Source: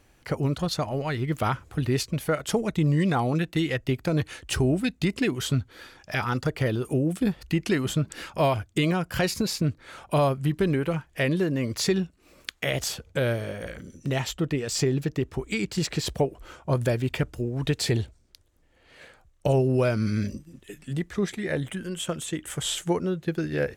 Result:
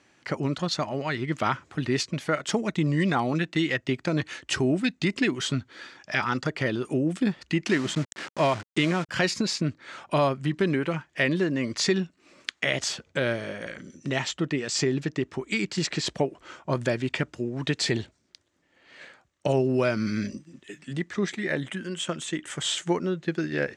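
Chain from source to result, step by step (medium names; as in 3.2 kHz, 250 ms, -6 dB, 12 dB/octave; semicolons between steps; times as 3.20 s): 7.68–9.09 s: send-on-delta sampling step -34 dBFS; cabinet simulation 190–7600 Hz, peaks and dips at 470 Hz -6 dB, 750 Hz -3 dB, 1.9 kHz +3 dB; trim +2 dB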